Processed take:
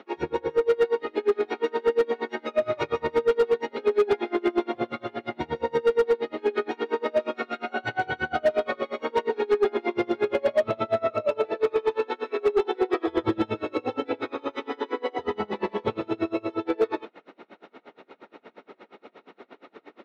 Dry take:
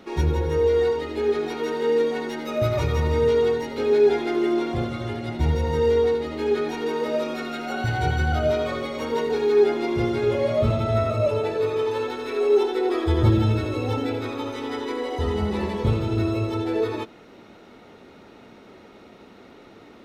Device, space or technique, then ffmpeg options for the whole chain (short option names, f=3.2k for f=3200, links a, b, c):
helicopter radio: -af "highpass=340,lowpass=2.9k,aeval=exprs='val(0)*pow(10,-30*(0.5-0.5*cos(2*PI*8.5*n/s))/20)':c=same,asoftclip=type=hard:threshold=-21.5dB,volume=6.5dB"